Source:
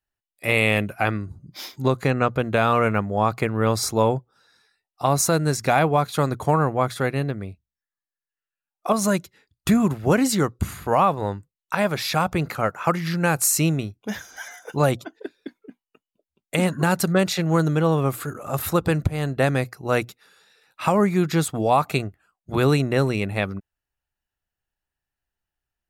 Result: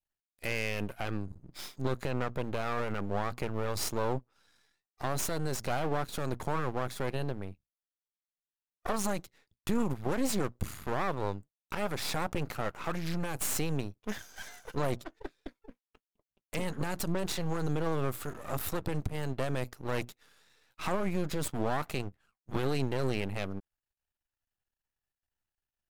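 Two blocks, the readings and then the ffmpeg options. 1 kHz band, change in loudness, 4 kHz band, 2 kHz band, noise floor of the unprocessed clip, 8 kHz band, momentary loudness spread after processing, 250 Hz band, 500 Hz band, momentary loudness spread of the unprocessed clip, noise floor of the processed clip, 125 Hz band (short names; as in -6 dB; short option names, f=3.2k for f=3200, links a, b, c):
-13.5 dB, -12.5 dB, -10.0 dB, -12.5 dB, under -85 dBFS, -11.5 dB, 9 LU, -12.5 dB, -12.0 dB, 12 LU, under -85 dBFS, -12.5 dB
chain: -af "alimiter=limit=-15dB:level=0:latency=1:release=31,adynamicequalizer=threshold=0.00708:dfrequency=1700:dqfactor=1.5:tfrequency=1700:tqfactor=1.5:attack=5:release=100:ratio=0.375:range=2:mode=cutabove:tftype=bell,aeval=exprs='max(val(0),0)':c=same,volume=-3.5dB"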